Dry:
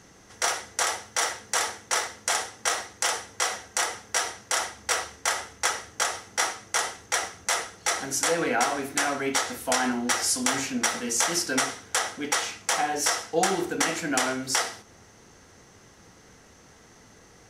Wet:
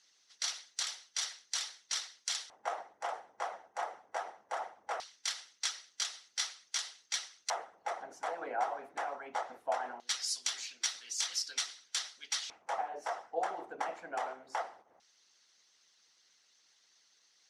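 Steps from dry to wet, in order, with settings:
harmonic and percussive parts rebalanced harmonic −15 dB
auto-filter band-pass square 0.2 Hz 750–4,200 Hz

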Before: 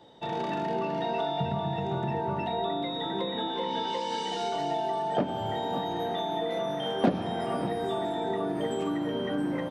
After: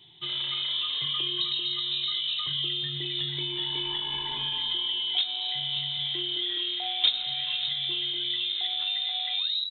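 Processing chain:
turntable brake at the end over 0.32 s
voice inversion scrambler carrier 3,900 Hz
hum removal 52.86 Hz, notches 4

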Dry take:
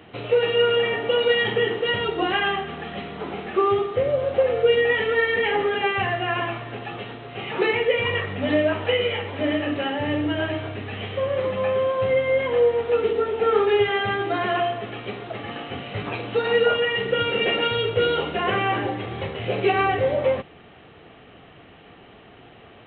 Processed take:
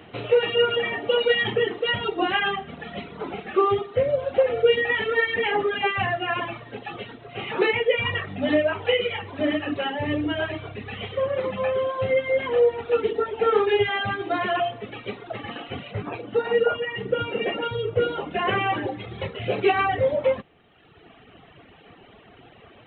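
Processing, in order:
reverb reduction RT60 1.5 s
0:15.91–0:18.31: low-pass filter 1,200 Hz 6 dB per octave
level +1 dB

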